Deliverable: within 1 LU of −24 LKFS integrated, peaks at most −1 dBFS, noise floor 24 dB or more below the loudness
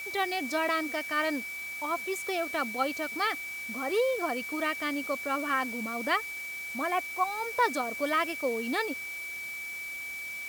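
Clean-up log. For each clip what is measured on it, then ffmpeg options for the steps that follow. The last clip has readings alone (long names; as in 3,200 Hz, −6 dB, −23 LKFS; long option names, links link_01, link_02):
interfering tone 2,300 Hz; level of the tone −36 dBFS; background noise floor −39 dBFS; target noise floor −55 dBFS; integrated loudness −30.5 LKFS; sample peak −14.0 dBFS; target loudness −24.0 LKFS
→ -af "bandreject=frequency=2300:width=30"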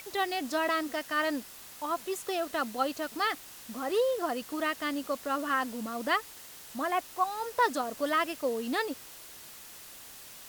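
interfering tone none found; background noise floor −49 dBFS; target noise floor −56 dBFS
→ -af "afftdn=noise_reduction=7:noise_floor=-49"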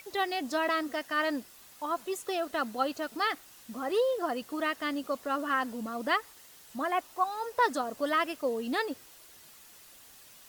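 background noise floor −54 dBFS; target noise floor −56 dBFS
→ -af "afftdn=noise_reduction=6:noise_floor=-54"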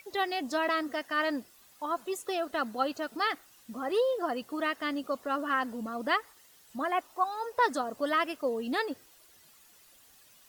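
background noise floor −59 dBFS; integrated loudness −31.5 LKFS; sample peak −15.0 dBFS; target loudness −24.0 LKFS
→ -af "volume=7.5dB"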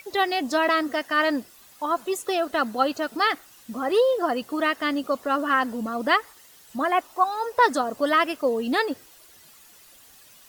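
integrated loudness −24.0 LKFS; sample peak −7.5 dBFS; background noise floor −52 dBFS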